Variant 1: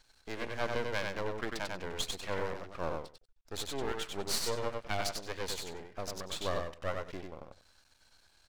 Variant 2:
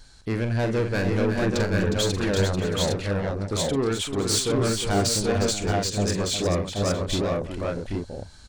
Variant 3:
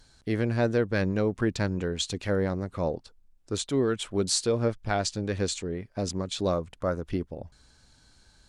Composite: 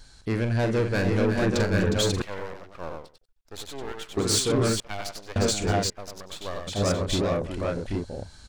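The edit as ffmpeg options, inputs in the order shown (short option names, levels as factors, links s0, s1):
-filter_complex "[0:a]asplit=3[s0][s1][s2];[1:a]asplit=4[s3][s4][s5][s6];[s3]atrim=end=2.222[s7];[s0]atrim=start=2.218:end=4.172[s8];[s4]atrim=start=4.168:end=4.802[s9];[s1]atrim=start=4.798:end=5.362[s10];[s5]atrim=start=5.358:end=5.902[s11];[s2]atrim=start=5.898:end=6.672[s12];[s6]atrim=start=6.668[s13];[s7][s8]acrossfade=d=0.004:c1=hsin:c2=hsin[s14];[s14][s9]acrossfade=d=0.004:c1=hsin:c2=hsin[s15];[s15][s10]acrossfade=d=0.004:c1=hsin:c2=hsin[s16];[s16][s11]acrossfade=d=0.004:c1=hsin:c2=hsin[s17];[s17][s12]acrossfade=d=0.004:c1=hsin:c2=hsin[s18];[s18][s13]acrossfade=d=0.004:c1=hsin:c2=hsin"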